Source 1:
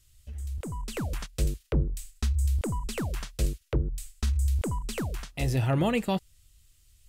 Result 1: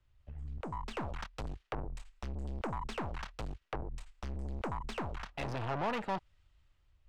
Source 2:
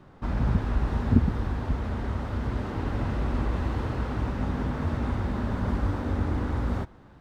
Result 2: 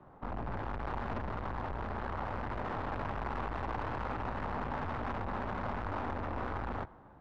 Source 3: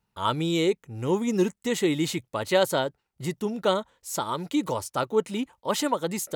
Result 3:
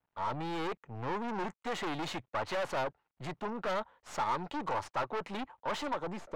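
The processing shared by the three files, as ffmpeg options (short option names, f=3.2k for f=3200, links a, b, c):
-filter_complex "[0:a]aeval=exprs='(tanh(56.2*val(0)+0.7)-tanh(0.7))/56.2':c=same,equalizer=f=840:w=0.84:g=9.5,acrossover=split=120|960[a][b][c];[c]dynaudnorm=f=120:g=9:m=6.5dB[d];[a][b][d]amix=inputs=3:normalize=0,acrusher=bits=11:mix=0:aa=0.000001,adynamicsmooth=sensitivity=7:basefreq=3.1k,aemphasis=mode=reproduction:type=cd,volume=-4dB"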